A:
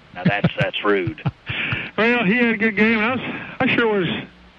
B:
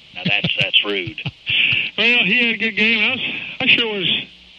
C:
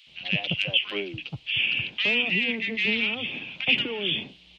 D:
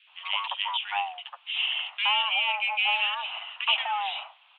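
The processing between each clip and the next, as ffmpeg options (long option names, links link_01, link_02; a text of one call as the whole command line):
ffmpeg -i in.wav -af "highshelf=frequency=2100:width_type=q:width=3:gain=11,volume=-5dB" out.wav
ffmpeg -i in.wav -filter_complex "[0:a]acrossover=split=1300[link_01][link_02];[link_01]adelay=70[link_03];[link_03][link_02]amix=inputs=2:normalize=0,volume=-8.5dB" out.wav
ffmpeg -i in.wav -af "highpass=frequency=410:width_type=q:width=0.5412,highpass=frequency=410:width_type=q:width=1.307,lowpass=frequency=2200:width_type=q:width=0.5176,lowpass=frequency=2200:width_type=q:width=0.7071,lowpass=frequency=2200:width_type=q:width=1.932,afreqshift=400,volume=6.5dB" out.wav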